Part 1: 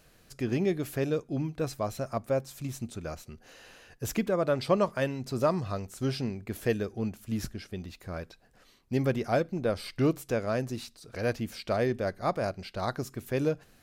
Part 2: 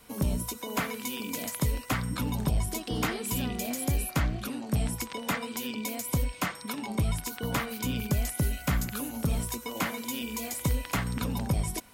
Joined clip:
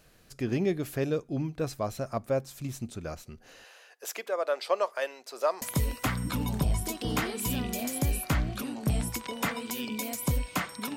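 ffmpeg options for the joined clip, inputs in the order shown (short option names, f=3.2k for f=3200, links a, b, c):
-filter_complex "[0:a]asettb=1/sr,asplit=3[a][b][c];[a]atrim=end=3.644[d];[b]atrim=start=3.64:end=5.62,asetpts=PTS-STARTPTS,afade=t=in:d=0.004:c=qsin,afade=t=out:st=1.976:d=0.004:c=qsin,highpass=f=500:w=0.5412,highpass=f=500:w=1.3066[e];[c]atrim=start=5.616[f];[d][e]acrossfade=d=0.004:c1=hsin:c2=qsin[g];[g][f]acrossfade=d=0.004:c1=qsin:c2=hsin,apad=whole_dur=10.96,atrim=end=10.96,atrim=end=5.622[h];[1:a]atrim=start=1.478:end=6.82[i];[h][i]acrossfade=d=0.004:c1=hsin:c2=hsin"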